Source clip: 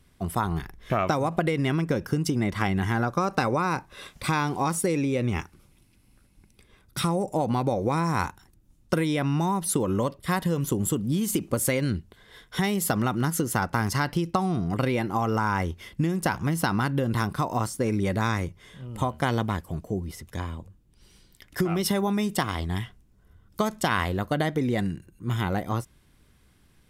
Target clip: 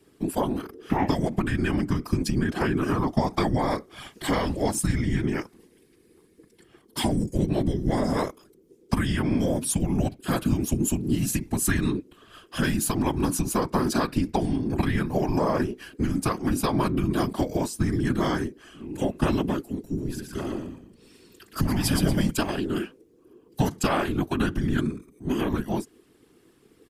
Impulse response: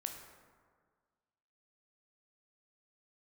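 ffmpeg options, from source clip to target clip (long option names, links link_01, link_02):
-filter_complex "[0:a]afreqshift=-410,asplit=3[link_01][link_02][link_03];[link_01]afade=type=out:start_time=19.97:duration=0.02[link_04];[link_02]asplit=6[link_05][link_06][link_07][link_08][link_09][link_10];[link_06]adelay=117,afreqshift=-40,volume=-4dB[link_11];[link_07]adelay=234,afreqshift=-80,volume=-12.9dB[link_12];[link_08]adelay=351,afreqshift=-120,volume=-21.7dB[link_13];[link_09]adelay=468,afreqshift=-160,volume=-30.6dB[link_14];[link_10]adelay=585,afreqshift=-200,volume=-39.5dB[link_15];[link_05][link_11][link_12][link_13][link_14][link_15]amix=inputs=6:normalize=0,afade=type=in:start_time=19.97:duration=0.02,afade=type=out:start_time=22.29:duration=0.02[link_16];[link_03]afade=type=in:start_time=22.29:duration=0.02[link_17];[link_04][link_16][link_17]amix=inputs=3:normalize=0,afftfilt=real='hypot(re,im)*cos(2*PI*random(0))':imag='hypot(re,im)*sin(2*PI*random(1))':win_size=512:overlap=0.75,volume=7dB"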